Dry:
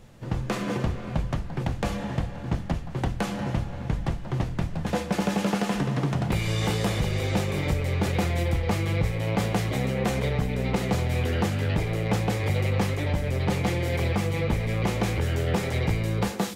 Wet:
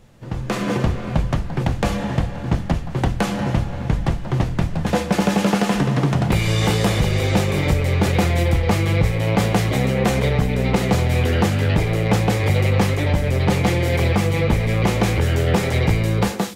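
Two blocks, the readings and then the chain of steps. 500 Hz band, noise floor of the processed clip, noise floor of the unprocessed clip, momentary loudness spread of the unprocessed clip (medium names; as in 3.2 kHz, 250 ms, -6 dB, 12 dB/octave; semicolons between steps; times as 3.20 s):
+7.5 dB, -28 dBFS, -35 dBFS, 5 LU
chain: level rider gain up to 7.5 dB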